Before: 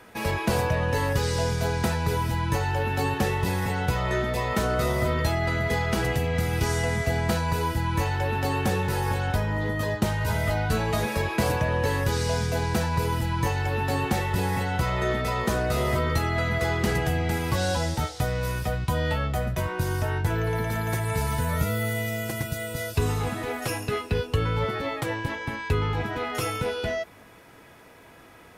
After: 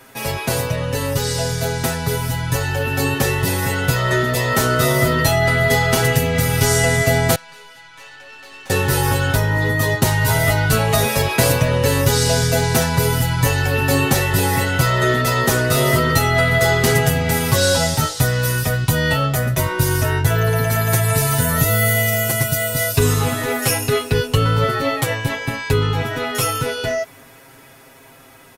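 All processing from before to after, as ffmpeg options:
-filter_complex "[0:a]asettb=1/sr,asplit=3[s0][s1][s2];[s0]atrim=end=7.354[s3];[s1]atrim=start=7.35:end=8.7,asetpts=PTS-STARTPTS,afade=t=in:d=0.004:c=qsin,afade=t=out:st=1.346:d=0.004:c=qsin,highpass=150,lowpass=2400,aderivative,aeval=exprs='(tanh(141*val(0)+0.45)-tanh(0.45))/141':c=same[s4];[s2]atrim=start=8.696[s5];[s3][s4]acrossfade=d=0.004:c1=hsin:c2=qsin[s6];[s6][s5]acrossfade=d=0.004:c1=qsin:c2=hsin,highshelf=f=5500:g=10.5,aecho=1:1:7.5:0.93,dynaudnorm=f=570:g=11:m=2.24,volume=1.12"

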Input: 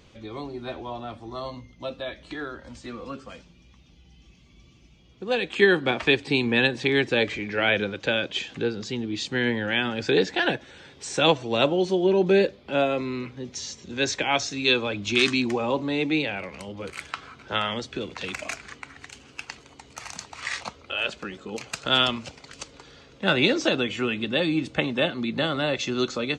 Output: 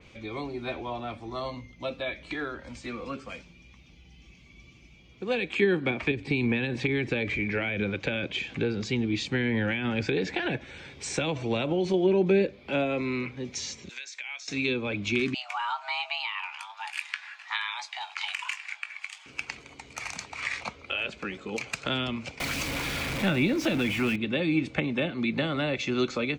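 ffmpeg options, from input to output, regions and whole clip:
-filter_complex "[0:a]asettb=1/sr,asplit=3[s0][s1][s2];[s0]atrim=end=6.114[s3];[s1]atrim=start=6.11:end=11.94,asetpts=PTS-STARTPTS,afade=t=in:d=0.004:c=qsin,afade=t=out:st=5.826:d=0.004:c=qsin,acompressor=threshold=0.0794:ratio=6:attack=3.2:release=140:knee=1:detection=peak,lowshelf=f=150:g=8[s4];[s2]atrim=start=11.936[s5];[s3][s4]acrossfade=d=0.004:c1=hsin:c2=qsin[s6];[s6][s5]acrossfade=d=0.004:c1=qsin:c2=hsin,asettb=1/sr,asplit=3[s7][s8][s9];[s7]atrim=end=13.894[s10];[s8]atrim=start=13.89:end=14.48,asetpts=PTS-STARTPTS,afade=t=in:d=0.004:c=qsin,afade=t=out:st=0.586:d=0.004:c=qsin,highpass=1300,highshelf=f=5200:g=8.5,acompressor=threshold=0.0126:ratio=16:attack=3.2:release=140:knee=1:detection=peak[s11];[s9]atrim=start=14.476[s12];[s10][s11]acrossfade=d=0.004:c1=hsin:c2=qsin[s13];[s13][s12]acrossfade=d=0.004:c1=qsin:c2=hsin,asettb=1/sr,asplit=3[s14][s15][s16];[s14]atrim=end=15.344[s17];[s15]atrim=start=15.34:end=19.26,asetpts=PTS-STARTPTS,afade=t=in:d=0.004:c=qsin,afade=t=out:st=3.916:d=0.004:c=qsin,highpass=f=510:w=0.5412,highpass=f=510:w=1.3066,afreqshift=370,asplit=2[s18][s19];[s19]adelay=20,volume=0.299[s20];[s18][s20]amix=inputs=2:normalize=0,atrim=end_sample=172872[s21];[s16]atrim=start=19.256[s22];[s17][s21]acrossfade=d=0.004:c1=hsin:c2=qsin[s23];[s23][s22]acrossfade=d=0.004:c1=qsin:c2=hsin,asettb=1/sr,asplit=3[s24][s25][s26];[s24]atrim=end=22.404[s27];[s25]atrim=start=22.4:end=24.16,asetpts=PTS-STARTPTS,afade=t=in:d=0.004:c=qsin,afade=t=out:st=1.756:d=0.004:c=qsin,aeval=exprs='val(0)+0.5*0.0562*sgn(val(0))':c=same,equalizer=f=430:w=5.5:g=-10[s28];[s26]atrim=start=24.156[s29];[s27][s28]acrossfade=d=0.004:c1=hsin:c2=qsin[s30];[s30][s29]acrossfade=d=0.004:c1=qsin:c2=hsin,equalizer=f=2300:w=5.5:g=11,acrossover=split=370[s31][s32];[s32]acompressor=threshold=0.0447:ratio=10[s33];[s31][s33]amix=inputs=2:normalize=0,adynamicequalizer=threshold=0.00631:dfrequency=3900:dqfactor=0.7:tfrequency=3900:tqfactor=0.7:attack=5:release=100:ratio=0.375:range=2.5:mode=cutabove:tftype=highshelf"

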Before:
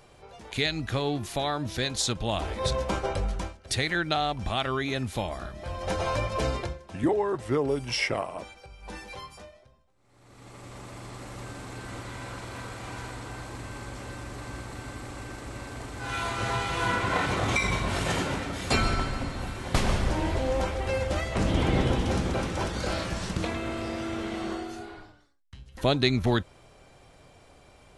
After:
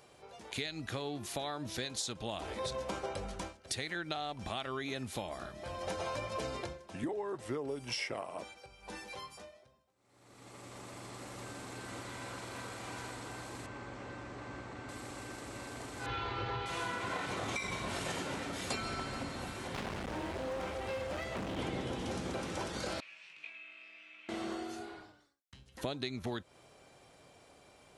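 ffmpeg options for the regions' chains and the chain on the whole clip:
-filter_complex "[0:a]asettb=1/sr,asplit=3[s0][s1][s2];[s0]atrim=end=13.664[s3];[s1]atrim=start=13.66:end=14.89,asetpts=PTS-STARTPTS,afade=t=in:d=0.004:c=qsin,afade=t=out:st=1.226:d=0.004:c=qsin,acrossover=split=2800[s4][s5];[s5]acompressor=threshold=0.00112:ratio=4:attack=1:release=60[s6];[s4][s6]amix=inputs=2:normalize=0,lowpass=f=7500:w=0.5412,lowpass=f=7500:w=1.3066[s7];[s2]atrim=start=14.886[s8];[s3][s7]acrossfade=d=0.004:c1=hsin:c2=qsin[s9];[s9][s8]acrossfade=d=0.004:c1=qsin:c2=hsin,asettb=1/sr,asplit=3[s10][s11][s12];[s10]atrim=end=16.064[s13];[s11]atrim=start=16.06:end=16.66,asetpts=PTS-STARTPTS,afade=t=in:d=0.004:c=qsin,afade=t=out:st=0.596:d=0.004:c=qsin,lowpass=f=4200:w=0.5412,lowpass=f=4200:w=1.3066,lowshelf=f=230:g=8,aecho=1:1:2.3:0.56,atrim=end_sample=26460[s14];[s12]atrim=start=16.656[s15];[s13][s14]acrossfade=d=0.004:c1=hsin:c2=qsin[s16];[s16][s15]acrossfade=d=0.004:c1=qsin:c2=hsin,asettb=1/sr,asplit=3[s17][s18][s19];[s17]atrim=end=19.674[s20];[s18]atrim=start=19.67:end=21.59,asetpts=PTS-STARTPTS,afade=t=in:d=0.004:c=qsin,afade=t=out:st=1.916:d=0.004:c=qsin,acrossover=split=3400[s21][s22];[s22]acompressor=threshold=0.00316:ratio=4:attack=1:release=60[s23];[s21][s23]amix=inputs=2:normalize=0,volume=23.7,asoftclip=hard,volume=0.0422[s24];[s19]atrim=start=21.586[s25];[s20][s24]acrossfade=d=0.004:c1=hsin:c2=qsin[s26];[s26][s25]acrossfade=d=0.004:c1=qsin:c2=hsin,asettb=1/sr,asplit=3[s27][s28][s29];[s27]atrim=end=23.004[s30];[s28]atrim=start=23:end=24.29,asetpts=PTS-STARTPTS,afade=t=in:d=0.004:c=qsin,afade=t=out:st=1.286:d=0.004:c=qsin,afreqshift=-19,bandpass=f=2500:t=q:w=9.9,asplit=2[s31][s32];[s32]adelay=19,volume=0.631[s33];[s31][s33]amix=inputs=2:normalize=0,atrim=end_sample=56889[s34];[s29]atrim=start=24.286[s35];[s30][s34]acrossfade=d=0.004:c1=hsin:c2=qsin[s36];[s36][s35]acrossfade=d=0.004:c1=qsin:c2=hsin,highpass=f=260:p=1,equalizer=f=1400:w=0.38:g=-3,acompressor=threshold=0.0224:ratio=6,volume=0.841"

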